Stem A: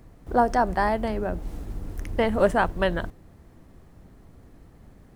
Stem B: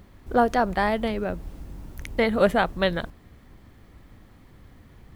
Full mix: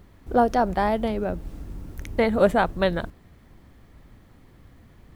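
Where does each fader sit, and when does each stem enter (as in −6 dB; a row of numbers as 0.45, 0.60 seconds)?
−7.5, −2.0 decibels; 0.00, 0.00 seconds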